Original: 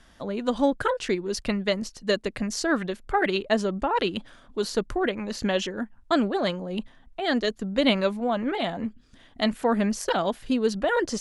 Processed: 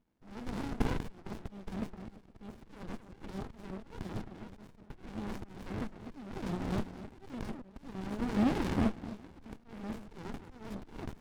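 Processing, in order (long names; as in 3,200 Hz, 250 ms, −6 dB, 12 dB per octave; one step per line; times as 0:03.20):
compressor on every frequency bin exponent 0.4
noise gate −21 dBFS, range −45 dB
parametric band 150 Hz +6.5 dB 1.4 octaves
in parallel at −0.5 dB: brickwall limiter −12.5 dBFS, peak gain reduction 9.5 dB
on the sum: downward compressor 2.5 to 1, threshold −18 dBFS, peak gain reduction 7.5 dB
on a send: delay that swaps between a low-pass and a high-pass 256 ms, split 960 Hz, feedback 52%, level −13.5 dB
on the sum: formants moved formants +3 semitones
volume swells 692 ms
windowed peak hold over 65 samples
level −7 dB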